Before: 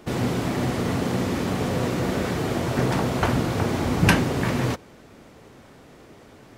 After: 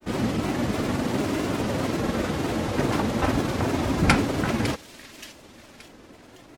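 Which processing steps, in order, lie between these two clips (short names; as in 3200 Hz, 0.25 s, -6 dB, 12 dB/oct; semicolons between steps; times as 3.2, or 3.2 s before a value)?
comb 3.4 ms, depth 35%; thin delay 0.569 s, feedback 43%, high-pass 2900 Hz, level -8 dB; grains, spray 10 ms, pitch spread up and down by 3 st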